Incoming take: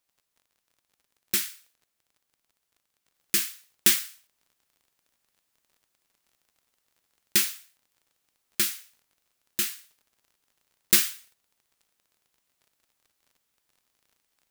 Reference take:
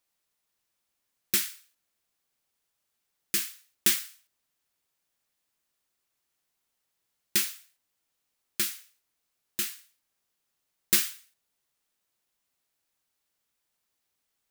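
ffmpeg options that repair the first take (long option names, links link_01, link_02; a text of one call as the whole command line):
ffmpeg -i in.wav -af "adeclick=threshold=4,asetnsamples=nb_out_samples=441:pad=0,asendcmd='3.14 volume volume -3.5dB',volume=0dB" out.wav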